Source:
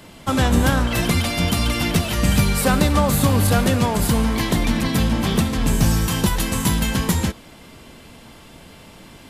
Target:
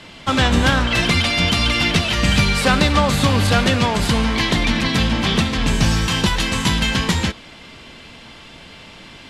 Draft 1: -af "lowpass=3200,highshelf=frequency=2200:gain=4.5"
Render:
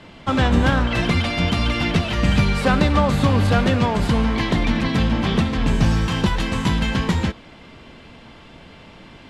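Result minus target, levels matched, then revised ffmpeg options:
4,000 Hz band −6.0 dB
-af "lowpass=3200,highshelf=frequency=2200:gain=16.5"

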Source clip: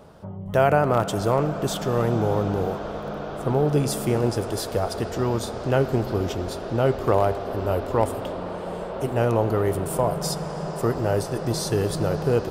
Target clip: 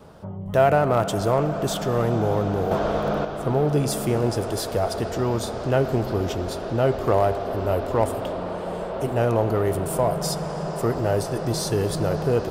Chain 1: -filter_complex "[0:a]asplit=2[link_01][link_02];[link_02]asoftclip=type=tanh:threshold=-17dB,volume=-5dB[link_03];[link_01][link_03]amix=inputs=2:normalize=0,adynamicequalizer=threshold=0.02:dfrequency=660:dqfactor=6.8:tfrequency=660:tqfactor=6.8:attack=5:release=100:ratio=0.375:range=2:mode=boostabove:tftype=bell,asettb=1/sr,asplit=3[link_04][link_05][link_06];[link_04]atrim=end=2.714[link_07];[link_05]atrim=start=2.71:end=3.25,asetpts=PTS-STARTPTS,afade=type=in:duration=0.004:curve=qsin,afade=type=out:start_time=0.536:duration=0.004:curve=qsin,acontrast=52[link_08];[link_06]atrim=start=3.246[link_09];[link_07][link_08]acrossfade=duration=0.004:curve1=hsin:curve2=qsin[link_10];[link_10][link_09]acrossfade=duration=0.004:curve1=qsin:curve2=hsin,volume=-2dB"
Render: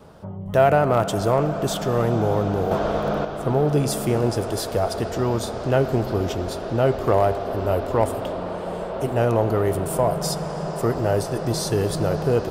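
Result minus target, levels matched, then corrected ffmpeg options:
soft clipping: distortion −7 dB
-filter_complex "[0:a]asplit=2[link_01][link_02];[link_02]asoftclip=type=tanh:threshold=-25.5dB,volume=-5dB[link_03];[link_01][link_03]amix=inputs=2:normalize=0,adynamicequalizer=threshold=0.02:dfrequency=660:dqfactor=6.8:tfrequency=660:tqfactor=6.8:attack=5:release=100:ratio=0.375:range=2:mode=boostabove:tftype=bell,asettb=1/sr,asplit=3[link_04][link_05][link_06];[link_04]atrim=end=2.714[link_07];[link_05]atrim=start=2.71:end=3.25,asetpts=PTS-STARTPTS,afade=type=in:duration=0.004:curve=qsin,afade=type=out:start_time=0.536:duration=0.004:curve=qsin,acontrast=52[link_08];[link_06]atrim=start=3.246[link_09];[link_07][link_08]acrossfade=duration=0.004:curve1=hsin:curve2=qsin[link_10];[link_10][link_09]acrossfade=duration=0.004:curve1=qsin:curve2=hsin,volume=-2dB"

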